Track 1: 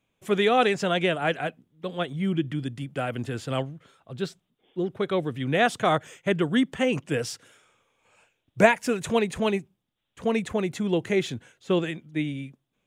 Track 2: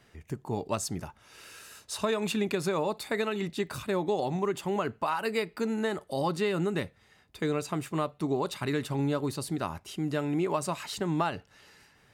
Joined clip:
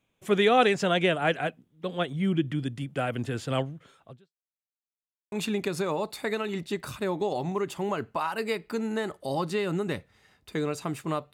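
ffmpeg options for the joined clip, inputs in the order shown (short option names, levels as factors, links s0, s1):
-filter_complex "[0:a]apad=whole_dur=11.33,atrim=end=11.33,asplit=2[s0][s1];[s0]atrim=end=4.52,asetpts=PTS-STARTPTS,afade=t=out:st=4.09:d=0.43:c=exp[s2];[s1]atrim=start=4.52:end=5.32,asetpts=PTS-STARTPTS,volume=0[s3];[1:a]atrim=start=2.19:end=8.2,asetpts=PTS-STARTPTS,afade=t=in:d=0.004:c=hsin[s4];[s2][s3][s4]concat=n=3:v=0:a=1"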